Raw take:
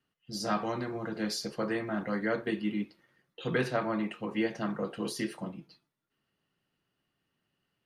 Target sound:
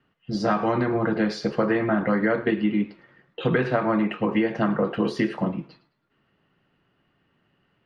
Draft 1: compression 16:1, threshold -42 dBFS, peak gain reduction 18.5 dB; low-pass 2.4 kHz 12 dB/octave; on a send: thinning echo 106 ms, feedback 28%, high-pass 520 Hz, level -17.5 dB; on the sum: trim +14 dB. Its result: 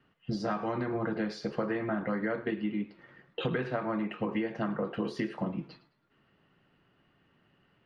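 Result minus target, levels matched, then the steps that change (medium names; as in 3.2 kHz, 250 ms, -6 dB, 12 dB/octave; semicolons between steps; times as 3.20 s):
compression: peak gain reduction +10 dB
change: compression 16:1, threshold -31.5 dBFS, peak gain reduction 8.5 dB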